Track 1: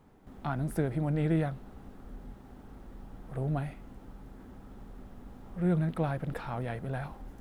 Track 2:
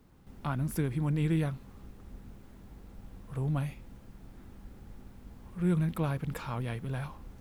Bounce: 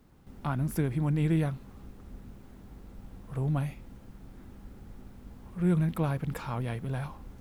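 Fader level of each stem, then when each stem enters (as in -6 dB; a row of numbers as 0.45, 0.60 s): -13.0, +0.5 dB; 0.00, 0.00 s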